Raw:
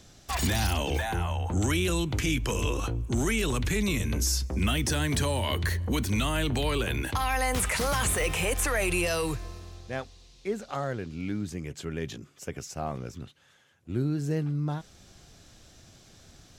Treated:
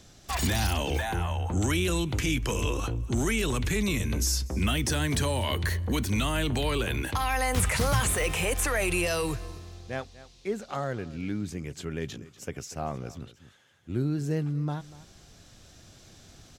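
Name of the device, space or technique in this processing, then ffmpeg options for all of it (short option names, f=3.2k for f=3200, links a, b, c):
ducked delay: -filter_complex "[0:a]asettb=1/sr,asplit=3[a][b][c];[a]atrim=end=7.574[d];[b]atrim=start=7.57:end=8,asetpts=PTS-STARTPTS,afade=t=in:d=0.004:c=qsin,afade=t=out:st=0.426:d=0.004:c=qsin,equalizer=f=100:w=1.1:g=11.5[e];[c]atrim=start=7.996[f];[d][e]acrossfade=d=0.004:c1=hsin:c2=qsin[g];[g][f]acrossfade=d=0.004:c1=qsin:c2=hsin,asplit=3[h][i][j];[i]adelay=241,volume=-3.5dB[k];[j]apad=whole_len=742113[l];[k][l]sidechaincompress=threshold=-46dB:ratio=8:attack=37:release=944[m];[h][m]amix=inputs=2:normalize=0"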